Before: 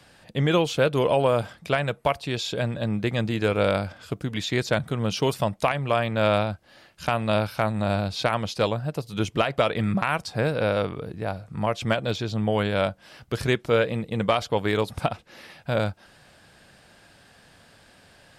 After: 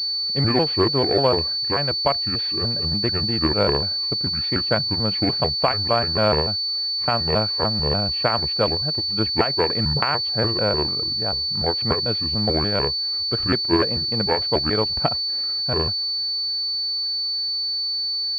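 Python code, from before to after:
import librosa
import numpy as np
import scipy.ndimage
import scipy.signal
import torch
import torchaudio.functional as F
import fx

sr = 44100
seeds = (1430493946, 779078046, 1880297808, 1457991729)

y = fx.pitch_trill(x, sr, semitones=-5.5, every_ms=147)
y = fx.cheby_harmonics(y, sr, harmonics=(3, 5, 7), levels_db=(-15, -22, -25), full_scale_db=-8.0)
y = fx.pwm(y, sr, carrier_hz=4500.0)
y = F.gain(torch.from_numpy(y), 5.5).numpy()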